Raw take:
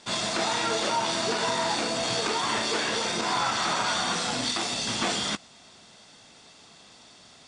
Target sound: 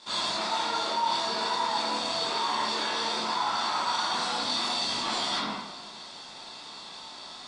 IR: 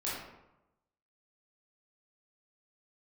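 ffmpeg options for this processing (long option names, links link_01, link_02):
-filter_complex "[1:a]atrim=start_sample=2205[link_01];[0:a][link_01]afir=irnorm=-1:irlink=0,areverse,acompressor=threshold=-32dB:ratio=6,areverse,equalizer=frequency=100:width_type=o:width=0.67:gain=-11,equalizer=frequency=1000:width_type=o:width=0.67:gain=9,equalizer=frequency=4000:width_type=o:width=0.67:gain=9"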